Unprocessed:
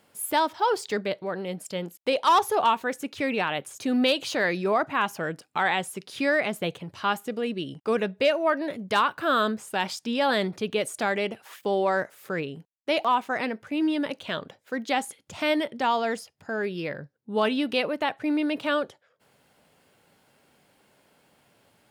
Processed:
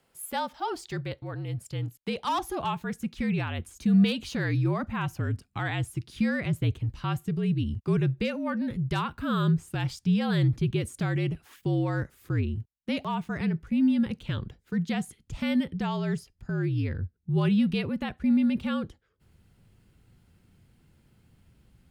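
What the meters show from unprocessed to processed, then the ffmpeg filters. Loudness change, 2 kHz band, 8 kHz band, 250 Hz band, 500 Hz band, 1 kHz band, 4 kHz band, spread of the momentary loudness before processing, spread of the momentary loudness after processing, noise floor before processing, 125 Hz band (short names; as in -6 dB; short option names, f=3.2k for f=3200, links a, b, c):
-2.0 dB, -8.0 dB, -7.0 dB, +3.0 dB, -9.0 dB, -9.5 dB, -7.5 dB, 10 LU, 10 LU, -66 dBFS, +15.0 dB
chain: -af "afreqshift=-55,asubboost=boost=10.5:cutoff=180,volume=-7dB"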